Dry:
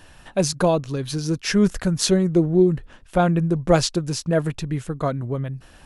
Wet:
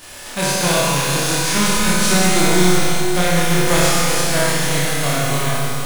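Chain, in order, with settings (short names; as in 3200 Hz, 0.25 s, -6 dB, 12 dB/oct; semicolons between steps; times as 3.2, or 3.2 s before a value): spectral whitening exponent 0.3; power-law curve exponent 0.7; on a send: flutter echo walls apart 4.8 m, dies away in 0.59 s; on the sum: Schroeder reverb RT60 3.3 s, combs from 32 ms, DRR -4.5 dB; gain -8 dB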